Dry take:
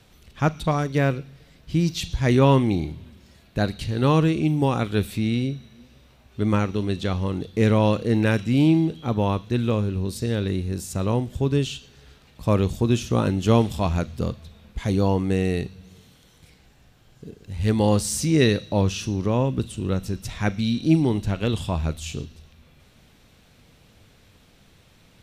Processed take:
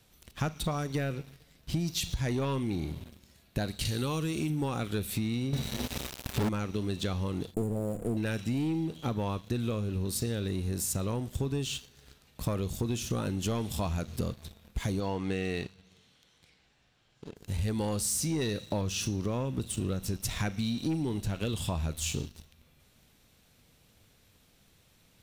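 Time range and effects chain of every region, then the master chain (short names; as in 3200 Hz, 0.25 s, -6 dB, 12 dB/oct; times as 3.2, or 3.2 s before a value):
3.85–4.5 high shelf 3800 Hz +10.5 dB + compressor 1.5:1, threshold -24 dBFS + mismatched tape noise reduction encoder only
5.53–6.49 doubler 32 ms -6.5 dB + sample leveller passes 5
7.54–8.17 minimum comb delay 0.59 ms + brick-wall FIR band-stop 770–6900 Hz
15–17.36 LPF 3700 Hz + tilt +2 dB/oct
whole clip: high shelf 6900 Hz +12 dB; sample leveller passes 2; compressor 10:1, threshold -22 dBFS; gain -6 dB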